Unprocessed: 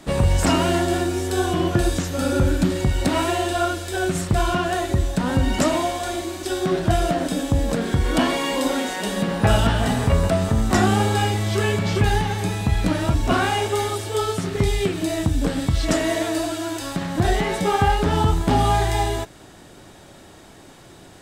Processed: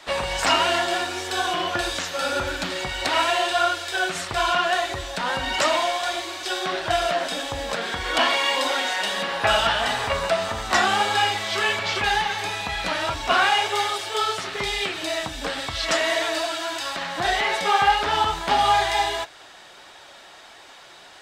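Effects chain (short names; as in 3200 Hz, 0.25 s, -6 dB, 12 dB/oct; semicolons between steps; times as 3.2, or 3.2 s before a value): high shelf 4500 Hz +12 dB; flange 1.6 Hz, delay 1.9 ms, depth 4.1 ms, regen -49%; three-band isolator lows -21 dB, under 590 Hz, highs -21 dB, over 4700 Hz; gain +7.5 dB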